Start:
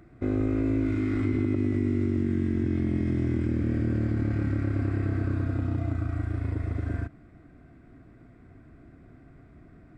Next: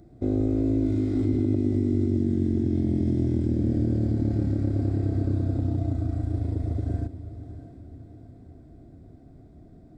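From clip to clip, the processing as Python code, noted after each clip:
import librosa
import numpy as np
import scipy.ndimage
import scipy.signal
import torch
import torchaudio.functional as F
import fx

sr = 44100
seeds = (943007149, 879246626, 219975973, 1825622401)

y = fx.band_shelf(x, sr, hz=1700.0, db=-15.0, octaves=1.7)
y = fx.echo_diffused(y, sr, ms=650, feedback_pct=45, wet_db=-13.0)
y = y * 10.0 ** (2.0 / 20.0)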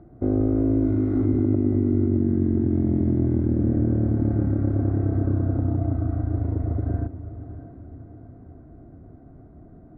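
y = fx.lowpass_res(x, sr, hz=1300.0, q=1.9)
y = y * 10.0 ** (2.5 / 20.0)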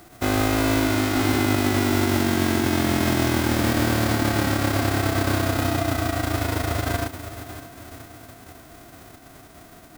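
y = fx.envelope_flatten(x, sr, power=0.3)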